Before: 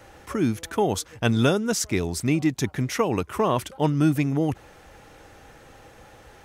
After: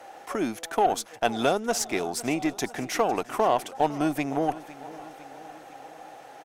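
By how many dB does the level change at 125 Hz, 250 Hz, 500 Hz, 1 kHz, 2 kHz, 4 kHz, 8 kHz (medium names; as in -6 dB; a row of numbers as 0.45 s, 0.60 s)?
-15.0 dB, -6.0 dB, -1.0 dB, +4.0 dB, -1.5 dB, -2.0 dB, -1.5 dB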